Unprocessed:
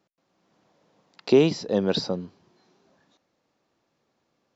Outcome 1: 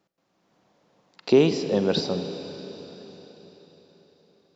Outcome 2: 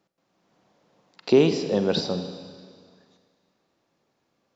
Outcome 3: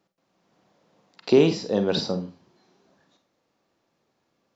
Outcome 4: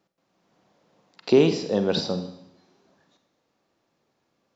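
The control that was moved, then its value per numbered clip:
Schroeder reverb, RT60: 4.4 s, 1.9 s, 0.3 s, 0.78 s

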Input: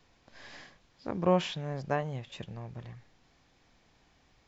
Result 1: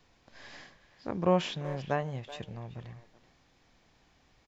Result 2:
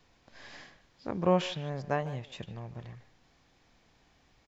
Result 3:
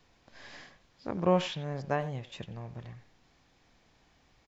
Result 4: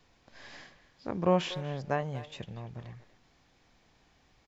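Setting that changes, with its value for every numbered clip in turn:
speakerphone echo, time: 380 ms, 150 ms, 90 ms, 240 ms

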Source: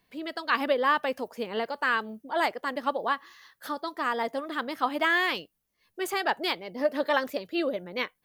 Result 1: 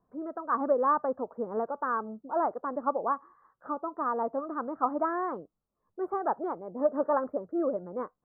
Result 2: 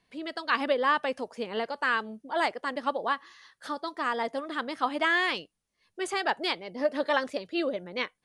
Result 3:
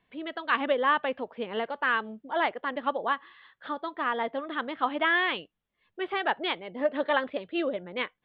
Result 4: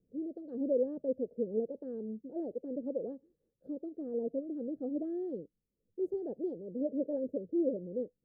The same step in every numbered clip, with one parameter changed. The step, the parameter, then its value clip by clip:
elliptic low-pass, frequency: 1.3 kHz, 10 kHz, 3.5 kHz, 510 Hz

